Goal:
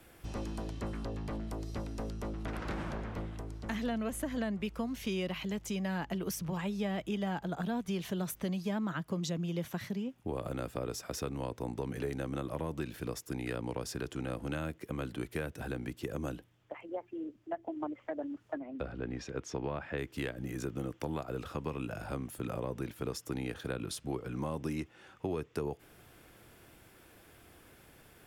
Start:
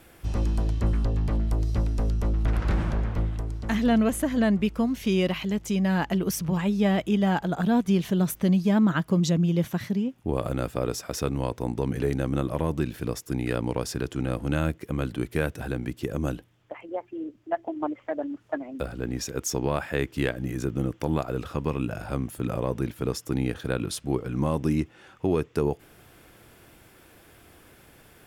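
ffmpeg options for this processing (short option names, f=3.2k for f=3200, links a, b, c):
-filter_complex "[0:a]asettb=1/sr,asplit=3[a][b][c];[a]atrim=end=18.594[d];[b]atrim=start=18.59:end=19.98,asetpts=PTS-STARTPTS,afade=t=in:d=0.004:c=qsin,afade=t=out:st=1.386:d=0.004:c=qsin,lowpass=3.3k[e];[c]atrim=start=19.976[f];[d][e]acrossfade=d=0.004:c1=hsin:c2=qsin[g];[g][f]acrossfade=d=0.004:c1=qsin:c2=hsin,acrossover=split=160|410[h][i][j];[h]acompressor=threshold=-38dB:ratio=4[k];[i]acompressor=threshold=-35dB:ratio=4[l];[j]acompressor=threshold=-32dB:ratio=4[m];[k][l][m]amix=inputs=3:normalize=0,volume=-5dB"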